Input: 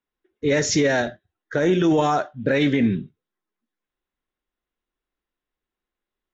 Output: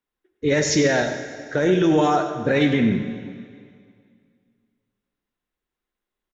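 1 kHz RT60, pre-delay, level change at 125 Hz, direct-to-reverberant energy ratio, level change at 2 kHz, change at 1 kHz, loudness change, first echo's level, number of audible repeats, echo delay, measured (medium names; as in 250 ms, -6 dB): 2.2 s, 7 ms, +1.0 dB, 6.5 dB, +1.0 dB, +1.0 dB, +0.5 dB, -13.0 dB, 2, 97 ms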